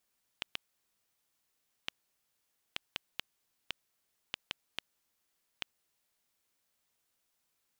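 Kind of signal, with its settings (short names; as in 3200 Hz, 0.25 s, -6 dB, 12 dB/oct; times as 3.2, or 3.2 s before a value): random clicks 2.1/s -16 dBFS 5.39 s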